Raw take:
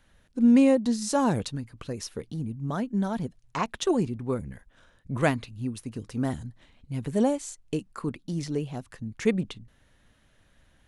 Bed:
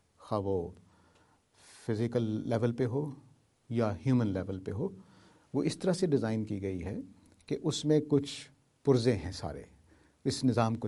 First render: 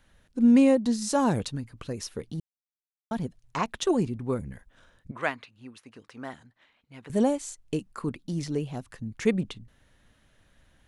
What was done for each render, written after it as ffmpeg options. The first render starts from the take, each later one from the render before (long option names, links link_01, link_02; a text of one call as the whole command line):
ffmpeg -i in.wav -filter_complex "[0:a]asettb=1/sr,asplit=3[link_01][link_02][link_03];[link_01]atrim=end=5.114[link_04];[link_02]atrim=start=5.11:end=7.1,asetpts=PTS-STARTPTS,afade=type=in:duration=0.004:curve=qsin,afade=type=out:start_time=1.986:duration=0.004:curve=qsin,bandpass=frequency=1600:width_type=q:width=0.73[link_05];[link_03]atrim=start=7.096[link_06];[link_04][link_05]acrossfade=duration=0.004:curve1=hsin:curve2=qsin[link_07];[link_07][link_06]acrossfade=duration=0.004:curve1=qsin:curve2=hsin,asplit=3[link_08][link_09][link_10];[link_08]atrim=end=2.4,asetpts=PTS-STARTPTS,afade=type=out:start_time=2.396:duration=0.004:curve=hsin[link_11];[link_09]atrim=start=2.4:end=3.11,asetpts=PTS-STARTPTS,volume=0[link_12];[link_10]atrim=start=3.11,asetpts=PTS-STARTPTS,afade=type=in:duration=0.004:curve=hsin[link_13];[link_11][link_12][link_13]concat=n=3:v=0:a=1" out.wav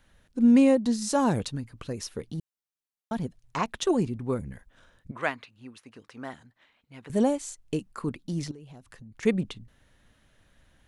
ffmpeg -i in.wav -filter_complex "[0:a]asettb=1/sr,asplit=3[link_01][link_02][link_03];[link_01]atrim=end=8.514[link_04];[link_02]atrim=start=8.51:end=9.23,asetpts=PTS-STARTPTS,afade=type=in:duration=0.004:curve=qsin,afade=type=out:start_time=0.716:duration=0.004:curve=qsin,acompressor=threshold=-44dB:ratio=6:attack=3.2:release=140:knee=1:detection=peak[link_05];[link_03]atrim=start=9.226[link_06];[link_04][link_05]acrossfade=duration=0.004:curve1=hsin:curve2=qsin[link_07];[link_07][link_06]acrossfade=duration=0.004:curve1=qsin:curve2=hsin" out.wav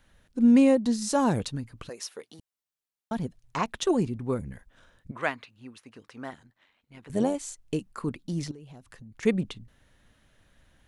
ffmpeg -i in.wav -filter_complex "[0:a]asplit=3[link_01][link_02][link_03];[link_01]afade=type=out:start_time=1.88:duration=0.02[link_04];[link_02]highpass=540,afade=type=in:start_time=1.88:duration=0.02,afade=type=out:start_time=2.39:duration=0.02[link_05];[link_03]afade=type=in:start_time=2.39:duration=0.02[link_06];[link_04][link_05][link_06]amix=inputs=3:normalize=0,asettb=1/sr,asplit=3[link_07][link_08][link_09];[link_07]atrim=end=6.304[link_10];[link_08]atrim=start=6.3:end=7.35,asetpts=PTS-STARTPTS,afade=type=in:duration=0.004:curve=qsin,afade=type=out:start_time=1.046:duration=0.004:curve=qsin,tremolo=f=94:d=0.519[link_11];[link_09]atrim=start=7.346[link_12];[link_10][link_11]acrossfade=duration=0.004:curve1=hsin:curve2=qsin[link_13];[link_13][link_12]acrossfade=duration=0.004:curve1=qsin:curve2=hsin" out.wav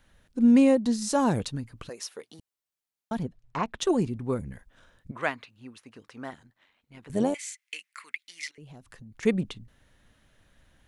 ffmpeg -i in.wav -filter_complex "[0:a]asettb=1/sr,asplit=3[link_01][link_02][link_03];[link_01]atrim=end=3.234[link_04];[link_02]atrim=start=3.23:end=3.8,asetpts=PTS-STARTPTS,afade=type=in:duration=0.004:curve=qsin,afade=type=out:start_time=0.566:duration=0.004:curve=qsin,aemphasis=mode=reproduction:type=75kf[link_05];[link_03]atrim=start=3.796[link_06];[link_04][link_05]acrossfade=duration=0.004:curve1=hsin:curve2=qsin[link_07];[link_07][link_06]acrossfade=duration=0.004:curve1=qsin:curve2=hsin,asettb=1/sr,asplit=3[link_08][link_09][link_10];[link_08]atrim=end=7.344[link_11];[link_09]atrim=start=7.34:end=8.58,asetpts=PTS-STARTPTS,afade=type=in:duration=0.004:curve=qsin,afade=type=out:start_time=1.236:duration=0.004:curve=qsin,highpass=frequency=2100:width_type=q:width=6.7[link_12];[link_10]atrim=start=8.576[link_13];[link_11][link_12]acrossfade=duration=0.004:curve1=hsin:curve2=qsin[link_14];[link_14][link_13]acrossfade=duration=0.004:curve1=qsin:curve2=hsin" out.wav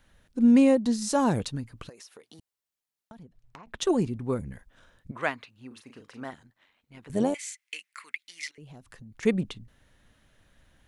ffmpeg -i in.wav -filter_complex "[0:a]asettb=1/sr,asplit=3[link_01][link_02][link_03];[link_01]atrim=end=1.894[link_04];[link_02]atrim=start=1.89:end=3.67,asetpts=PTS-STARTPTS,afade=type=in:duration=0.004:curve=qsin,afade=type=out:start_time=1.776:duration=0.004:curve=qsin,acompressor=threshold=-45dB:ratio=8:attack=3.2:release=140:knee=1:detection=peak[link_05];[link_03]atrim=start=3.666[link_06];[link_04][link_05]acrossfade=duration=0.004:curve1=hsin:curve2=qsin[link_07];[link_07][link_06]acrossfade=duration=0.004:curve1=qsin:curve2=hsin,asettb=1/sr,asplit=3[link_08][link_09][link_10];[link_08]atrim=end=5.674[link_11];[link_09]atrim=start=5.67:end=6.25,asetpts=PTS-STARTPTS,afade=type=in:duration=0.004:curve=qsin,afade=type=out:start_time=0.576:duration=0.004:curve=qsin,asplit=2[link_12][link_13];[link_13]adelay=39,volume=-7dB[link_14];[link_12][link_14]amix=inputs=2:normalize=0,atrim=end_sample=25578[link_15];[link_10]atrim=start=6.246[link_16];[link_11][link_15]acrossfade=duration=0.004:curve1=hsin:curve2=qsin[link_17];[link_17][link_16]acrossfade=duration=0.004:curve1=qsin:curve2=hsin" out.wav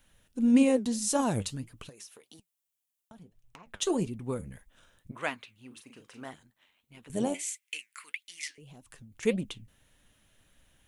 ffmpeg -i in.wav -af "aexciter=amount=2.2:drive=2.1:freq=2500,flanger=delay=3:depth=8.5:regen=70:speed=1.7:shape=triangular" out.wav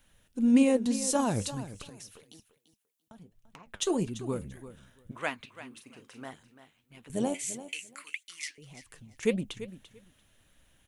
ffmpeg -i in.wav -af "aecho=1:1:341|682:0.2|0.0319" out.wav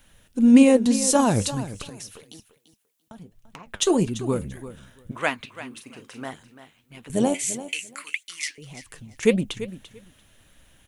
ffmpeg -i in.wav -af "volume=8.5dB" out.wav